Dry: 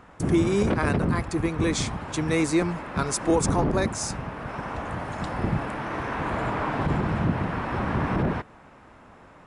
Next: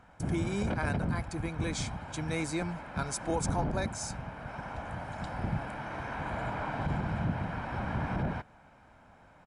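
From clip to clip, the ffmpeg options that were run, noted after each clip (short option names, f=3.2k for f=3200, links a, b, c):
-af "aecho=1:1:1.3:0.45,volume=-8.5dB"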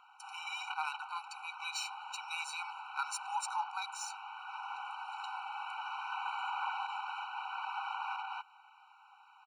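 -af "equalizer=f=3.2k:t=o:w=0.42:g=13,adynamicsmooth=sensitivity=7:basefreq=7.4k,afftfilt=real='re*eq(mod(floor(b*sr/1024/760),2),1)':imag='im*eq(mod(floor(b*sr/1024/760),2),1)':win_size=1024:overlap=0.75,volume=1.5dB"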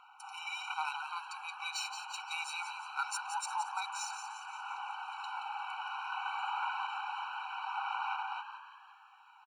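-filter_complex "[0:a]aphaser=in_gain=1:out_gain=1:delay=2.8:decay=0.24:speed=0.25:type=sinusoidal,asplit=2[a][b];[b]asplit=6[c][d][e][f][g][h];[c]adelay=174,afreqshift=54,volume=-8.5dB[i];[d]adelay=348,afreqshift=108,volume=-14.7dB[j];[e]adelay=522,afreqshift=162,volume=-20.9dB[k];[f]adelay=696,afreqshift=216,volume=-27.1dB[l];[g]adelay=870,afreqshift=270,volume=-33.3dB[m];[h]adelay=1044,afreqshift=324,volume=-39.5dB[n];[i][j][k][l][m][n]amix=inputs=6:normalize=0[o];[a][o]amix=inputs=2:normalize=0"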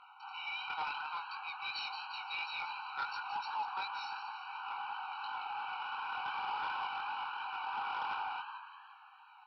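-af "flanger=delay=19.5:depth=3.6:speed=2.8,aresample=11025,asoftclip=type=tanh:threshold=-35.5dB,aresample=44100,volume=4dB"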